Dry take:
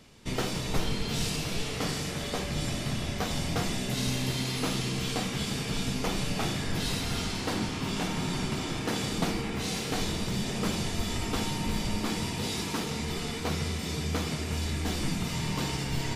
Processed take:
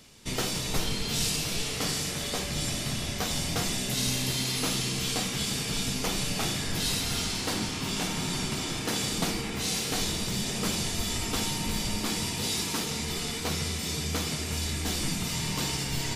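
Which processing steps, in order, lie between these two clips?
high-shelf EQ 3,400 Hz +10 dB
level −1.5 dB

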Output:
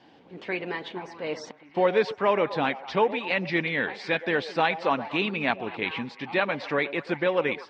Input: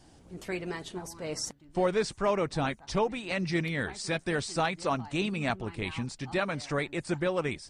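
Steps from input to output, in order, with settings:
loudspeaker in its box 300–3,500 Hz, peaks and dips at 360 Hz −4 dB, 650 Hz −5 dB, 1,300 Hz −6 dB
echo through a band-pass that steps 118 ms, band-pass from 610 Hz, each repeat 0.7 octaves, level −11 dB
level +8 dB

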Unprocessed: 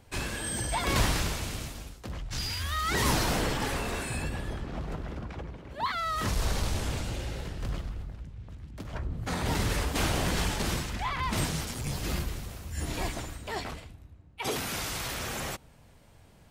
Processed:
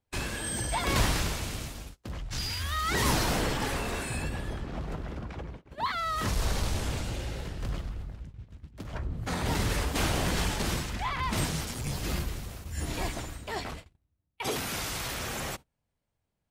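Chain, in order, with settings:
noise gate −42 dBFS, range −26 dB

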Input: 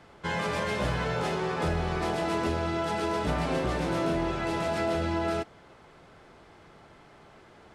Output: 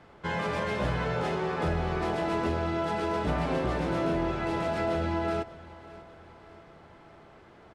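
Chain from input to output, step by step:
high-shelf EQ 4,400 Hz −9.5 dB
on a send: repeating echo 592 ms, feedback 54%, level −19 dB

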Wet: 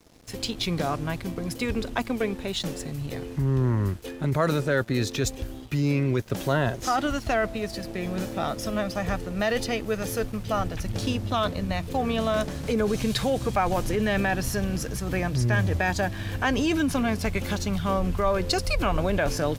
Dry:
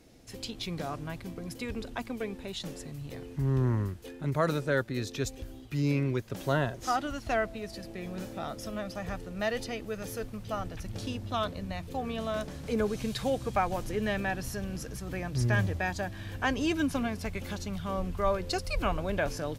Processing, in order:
in parallel at −2 dB: compressor whose output falls as the input rises −32 dBFS, ratio −0.5
on the sum: dead-zone distortion −51.5 dBFS
level +3 dB

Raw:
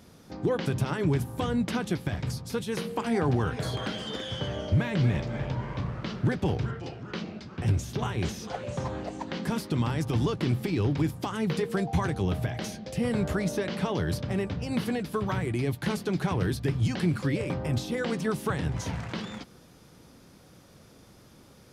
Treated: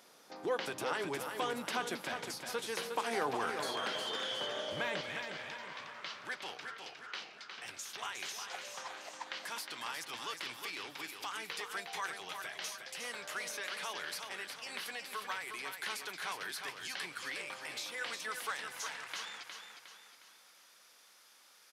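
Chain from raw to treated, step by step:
high-pass filter 600 Hz 12 dB per octave, from 0:05.01 1,300 Hz
repeating echo 360 ms, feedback 44%, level −6.5 dB
level −1.5 dB

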